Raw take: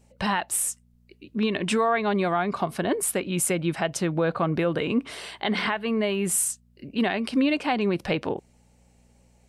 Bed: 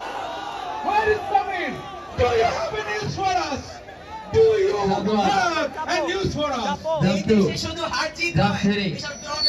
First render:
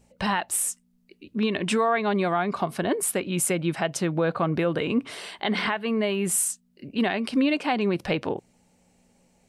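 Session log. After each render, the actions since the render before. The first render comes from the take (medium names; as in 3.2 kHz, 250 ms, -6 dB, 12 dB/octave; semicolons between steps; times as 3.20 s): de-hum 60 Hz, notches 2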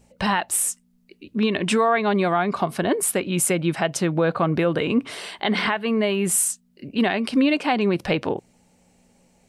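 trim +3.5 dB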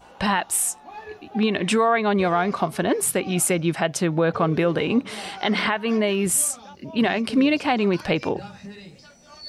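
add bed -19 dB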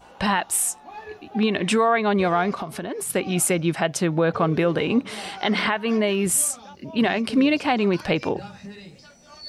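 2.54–3.10 s: compression, threshold -26 dBFS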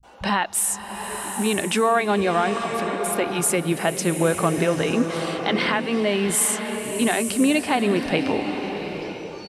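bands offset in time lows, highs 30 ms, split 150 Hz; swelling reverb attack 920 ms, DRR 6 dB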